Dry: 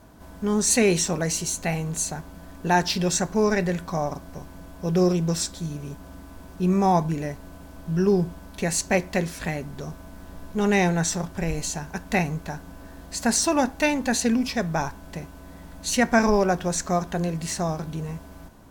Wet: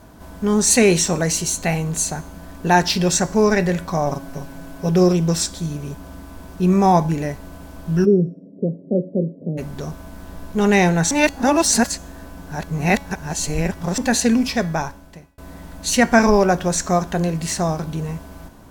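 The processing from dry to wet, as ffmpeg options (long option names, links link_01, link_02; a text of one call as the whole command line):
ffmpeg -i in.wav -filter_complex "[0:a]asettb=1/sr,asplit=3[link_01][link_02][link_03];[link_01]atrim=end=4.064[link_04];[link_02]atrim=start=4.06:end=4.89,asetpts=PTS-STARTPTS,afade=type=in:duration=0.004:curve=qsin,afade=type=out:start_time=0.826:duration=0.004:curve=qsin,aecho=1:1:7.3:0.65,atrim=end_sample=36603[link_05];[link_03]atrim=start=4.886[link_06];[link_04][link_05]acrossfade=duration=0.004:curve1=hsin:curve2=qsin[link_07];[link_07][link_06]acrossfade=duration=0.004:curve1=qsin:curve2=hsin,asplit=3[link_08][link_09][link_10];[link_08]afade=type=out:start_time=8.04:duration=0.02[link_11];[link_09]asuperpass=centerf=270:order=12:qfactor=0.64,afade=type=in:start_time=8.04:duration=0.02,afade=type=out:start_time=9.57:duration=0.02[link_12];[link_10]afade=type=in:start_time=9.57:duration=0.02[link_13];[link_11][link_12][link_13]amix=inputs=3:normalize=0,asplit=4[link_14][link_15][link_16][link_17];[link_14]atrim=end=11.112[link_18];[link_15]atrim=start=11.108:end=13.982,asetpts=PTS-STARTPTS,areverse[link_19];[link_16]atrim=start=13.978:end=15.38,asetpts=PTS-STARTPTS,afade=type=out:start_time=0.582:duration=0.82[link_20];[link_17]atrim=start=15.38,asetpts=PTS-STARTPTS,afade=type=in:duration=0.004:curve=hsin[link_21];[link_18][link_19]acrossfade=duration=0.004:curve1=hsin:curve2=hsin[link_22];[link_20][link_21]concat=n=2:v=0:a=1[link_23];[link_22][link_23]acrossfade=duration=0.004:curve1=hsin:curve2=hsin,bandreject=frequency=280.1:width_type=h:width=4,bandreject=frequency=560.2:width_type=h:width=4,bandreject=frequency=840.3:width_type=h:width=4,bandreject=frequency=1120.4:width_type=h:width=4,bandreject=frequency=1400.5:width_type=h:width=4,bandreject=frequency=1680.6:width_type=h:width=4,bandreject=frequency=1960.7:width_type=h:width=4,bandreject=frequency=2240.8:width_type=h:width=4,bandreject=frequency=2520.9:width_type=h:width=4,bandreject=frequency=2801:width_type=h:width=4,bandreject=frequency=3081.1:width_type=h:width=4,bandreject=frequency=3361.2:width_type=h:width=4,bandreject=frequency=3641.3:width_type=h:width=4,bandreject=frequency=3921.4:width_type=h:width=4,bandreject=frequency=4201.5:width_type=h:width=4,bandreject=frequency=4481.6:width_type=h:width=4,bandreject=frequency=4761.7:width_type=h:width=4,bandreject=frequency=5041.8:width_type=h:width=4,bandreject=frequency=5321.9:width_type=h:width=4,bandreject=frequency=5602:width_type=h:width=4,bandreject=frequency=5882.1:width_type=h:width=4,bandreject=frequency=6162.2:width_type=h:width=4,bandreject=frequency=6442.3:width_type=h:width=4,bandreject=frequency=6722.4:width_type=h:width=4,bandreject=frequency=7002.5:width_type=h:width=4,bandreject=frequency=7282.6:width_type=h:width=4,bandreject=frequency=7562.7:width_type=h:width=4,bandreject=frequency=7842.8:width_type=h:width=4,bandreject=frequency=8122.9:width_type=h:width=4,bandreject=frequency=8403:width_type=h:width=4,bandreject=frequency=8683.1:width_type=h:width=4,bandreject=frequency=8963.2:width_type=h:width=4,bandreject=frequency=9243.3:width_type=h:width=4,bandreject=frequency=9523.4:width_type=h:width=4,bandreject=frequency=9803.5:width_type=h:width=4,bandreject=frequency=10083.6:width_type=h:width=4,volume=5.5dB" out.wav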